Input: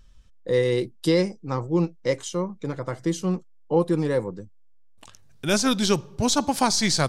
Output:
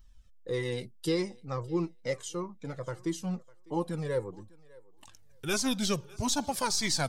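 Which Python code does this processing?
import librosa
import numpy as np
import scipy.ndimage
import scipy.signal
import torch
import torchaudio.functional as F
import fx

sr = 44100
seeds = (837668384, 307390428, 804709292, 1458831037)

y = fx.high_shelf(x, sr, hz=12000.0, db=11.5)
y = fx.echo_thinned(y, sr, ms=602, feedback_pct=16, hz=300.0, wet_db=-22.5)
y = fx.comb_cascade(y, sr, direction='falling', hz=1.6)
y = F.gain(torch.from_numpy(y), -3.5).numpy()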